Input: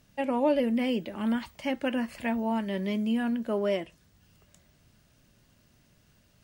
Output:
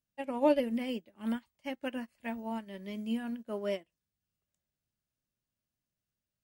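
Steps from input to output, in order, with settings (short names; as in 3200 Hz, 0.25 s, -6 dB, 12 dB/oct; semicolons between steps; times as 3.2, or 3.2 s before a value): high shelf 5500 Hz +6.5 dB; upward expander 2.5:1, over -41 dBFS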